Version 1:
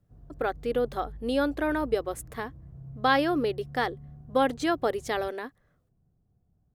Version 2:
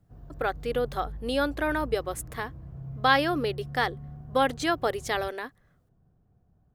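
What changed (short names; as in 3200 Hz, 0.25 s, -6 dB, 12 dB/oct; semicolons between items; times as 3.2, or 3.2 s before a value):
background +8.0 dB; master: add tilt shelf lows -4 dB, about 630 Hz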